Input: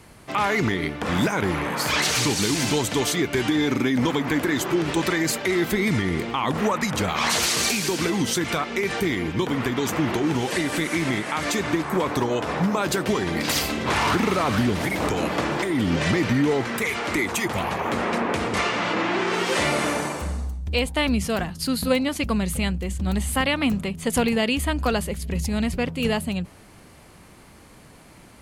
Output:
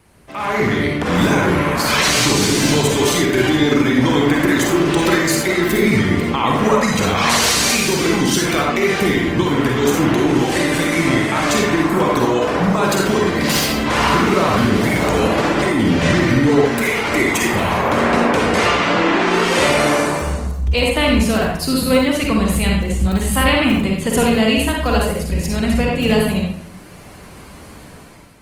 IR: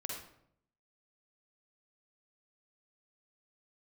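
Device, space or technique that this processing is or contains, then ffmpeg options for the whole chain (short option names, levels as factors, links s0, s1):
speakerphone in a meeting room: -filter_complex "[1:a]atrim=start_sample=2205[s0];[0:a][s0]afir=irnorm=-1:irlink=0,dynaudnorm=f=170:g=7:m=3.76,volume=0.891" -ar 48000 -c:a libopus -b:a 24k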